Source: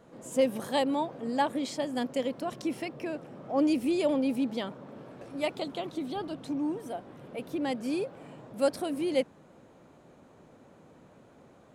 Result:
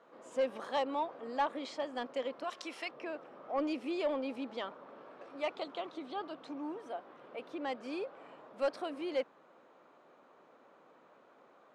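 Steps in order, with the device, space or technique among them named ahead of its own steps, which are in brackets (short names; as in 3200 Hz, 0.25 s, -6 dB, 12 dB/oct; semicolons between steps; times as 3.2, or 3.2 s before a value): intercom (BPF 420–4100 Hz; bell 1200 Hz +6 dB 0.57 oct; soft clip -19.5 dBFS, distortion -18 dB); 2.44–2.91 tilt +3.5 dB/oct; gain -3.5 dB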